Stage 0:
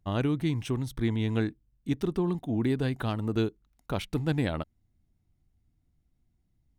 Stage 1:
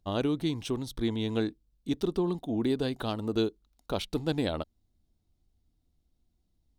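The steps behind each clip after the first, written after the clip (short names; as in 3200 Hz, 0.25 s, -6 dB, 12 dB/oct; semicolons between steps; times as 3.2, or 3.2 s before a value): graphic EQ 125/500/2000/4000 Hz -8/+3/-7/+7 dB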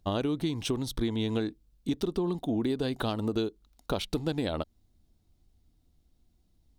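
compressor, threshold -32 dBFS, peak gain reduction 9.5 dB; gain +6 dB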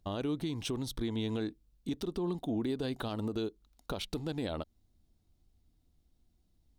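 limiter -22 dBFS, peak gain reduction 5.5 dB; gain -3.5 dB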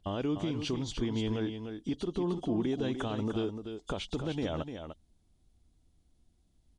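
nonlinear frequency compression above 2800 Hz 1.5:1; echo 0.298 s -8 dB; gain +2 dB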